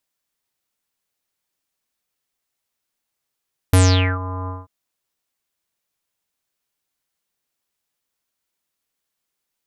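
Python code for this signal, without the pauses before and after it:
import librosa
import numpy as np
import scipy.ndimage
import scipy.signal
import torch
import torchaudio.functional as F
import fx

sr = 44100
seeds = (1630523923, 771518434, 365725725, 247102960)

y = fx.sub_voice(sr, note=42, wave='square', cutoff_hz=1100.0, q=9.4, env_oct=3.5, env_s=0.45, attack_ms=3.1, decay_s=0.45, sustain_db=-17, release_s=0.19, note_s=0.75, slope=24)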